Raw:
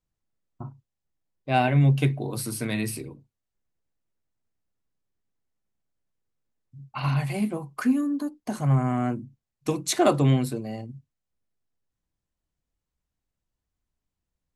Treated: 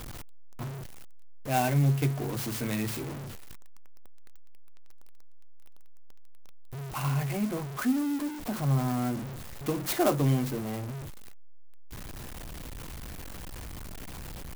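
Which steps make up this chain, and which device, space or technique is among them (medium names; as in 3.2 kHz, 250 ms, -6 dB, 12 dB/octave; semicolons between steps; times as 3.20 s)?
early CD player with a faulty converter (jump at every zero crossing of -27 dBFS; sampling jitter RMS 0.05 ms); trim -6 dB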